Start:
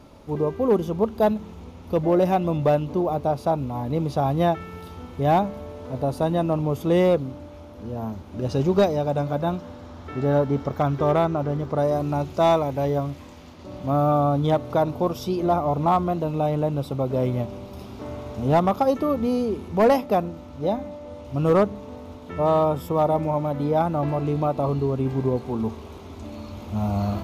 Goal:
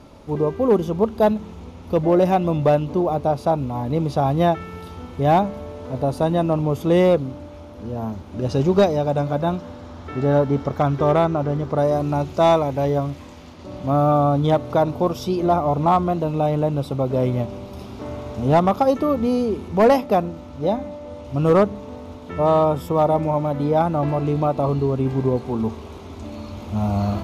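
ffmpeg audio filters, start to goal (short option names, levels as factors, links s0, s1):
-af "lowpass=12000,volume=1.41"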